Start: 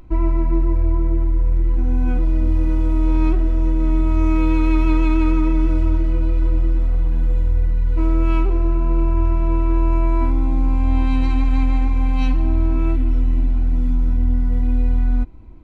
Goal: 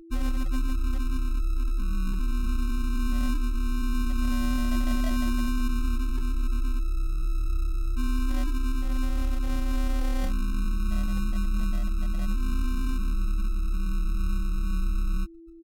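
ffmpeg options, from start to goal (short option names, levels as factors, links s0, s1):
-af "afftfilt=real='re*gte(hypot(re,im),0.178)':imag='im*gte(hypot(re,im),0.178)':win_size=1024:overlap=0.75,aexciter=amount=5.5:drive=1.3:freq=2600,acrusher=samples=26:mix=1:aa=0.000001,aeval=exprs='val(0)+0.0158*sin(2*PI*430*n/s)':c=same,asetrate=34006,aresample=44100,atempo=1.29684,volume=0.355"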